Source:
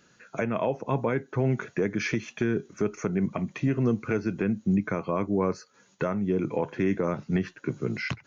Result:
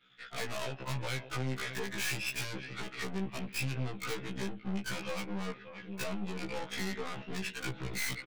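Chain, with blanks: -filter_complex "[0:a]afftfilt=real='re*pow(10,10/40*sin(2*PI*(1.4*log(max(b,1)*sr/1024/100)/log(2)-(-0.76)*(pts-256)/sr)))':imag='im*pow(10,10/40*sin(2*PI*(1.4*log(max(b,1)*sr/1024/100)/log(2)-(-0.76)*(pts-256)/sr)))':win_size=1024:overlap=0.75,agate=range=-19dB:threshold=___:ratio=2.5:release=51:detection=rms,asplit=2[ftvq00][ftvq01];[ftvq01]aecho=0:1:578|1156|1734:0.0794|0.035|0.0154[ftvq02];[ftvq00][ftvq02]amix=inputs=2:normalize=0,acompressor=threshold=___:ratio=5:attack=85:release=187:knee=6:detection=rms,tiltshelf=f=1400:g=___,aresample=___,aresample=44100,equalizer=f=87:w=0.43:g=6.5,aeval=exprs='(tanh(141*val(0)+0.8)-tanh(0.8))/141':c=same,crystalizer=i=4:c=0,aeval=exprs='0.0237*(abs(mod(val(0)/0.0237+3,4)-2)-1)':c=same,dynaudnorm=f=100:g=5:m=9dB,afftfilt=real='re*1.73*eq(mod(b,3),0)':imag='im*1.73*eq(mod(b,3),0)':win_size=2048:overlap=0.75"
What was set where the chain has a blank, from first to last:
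-58dB, -34dB, -8, 8000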